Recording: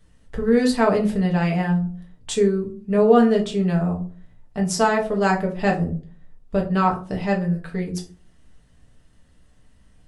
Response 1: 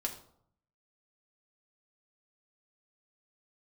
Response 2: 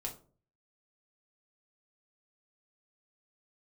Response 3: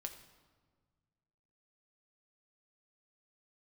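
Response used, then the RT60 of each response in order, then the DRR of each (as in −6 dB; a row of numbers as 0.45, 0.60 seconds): 2; 0.65, 0.45, 1.6 seconds; 0.5, −0.5, 4.5 decibels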